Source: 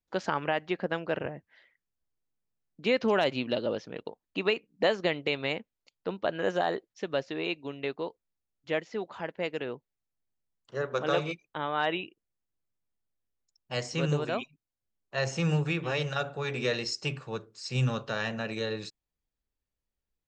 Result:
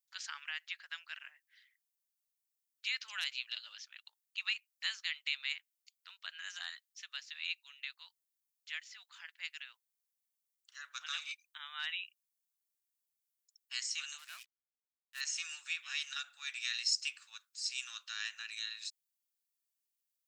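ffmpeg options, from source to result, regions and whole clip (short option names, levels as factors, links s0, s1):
-filter_complex "[0:a]asettb=1/sr,asplit=3[s0][s1][s2];[s0]atrim=end=14.184[s3];[s1]atrim=start=14.18:end=15.21,asetpts=PTS-STARTPTS,afade=t=in:d=0.004:c=qsin,afade=t=out:st=1.026:d=0.004:c=qsin,equalizer=f=4800:t=o:w=1.7:g=-10.5,bandreject=f=60:t=h:w=6,bandreject=f=120:t=h:w=6,bandreject=f=180:t=h:w=6,bandreject=f=240:t=h:w=6,bandreject=f=300:t=h:w=6,aeval=exprs='sgn(val(0))*max(abs(val(0))-0.00562,0)':c=same[s4];[s2]atrim=start=15.206[s5];[s3][s4]acrossfade=d=0.004:c1=hsin:c2=qsin[s6];[s6][s5]acrossfade=d=0.004:c1=qsin:c2=hsin,highpass=f=1400:w=0.5412,highpass=f=1400:w=1.3066,aderivative,volume=1.78"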